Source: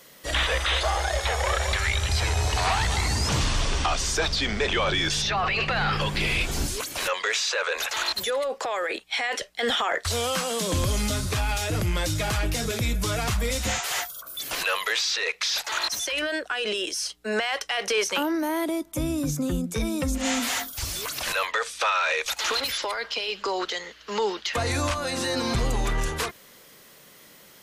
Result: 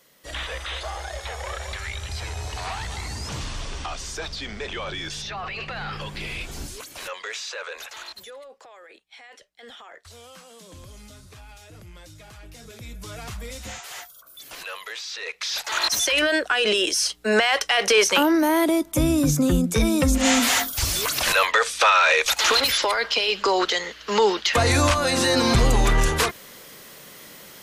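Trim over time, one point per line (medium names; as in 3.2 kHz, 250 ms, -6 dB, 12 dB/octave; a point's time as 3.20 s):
7.64 s -7.5 dB
8.73 s -19.5 dB
12.36 s -19.5 dB
13.22 s -9.5 dB
15.01 s -9.5 dB
15.62 s 0 dB
15.98 s +7 dB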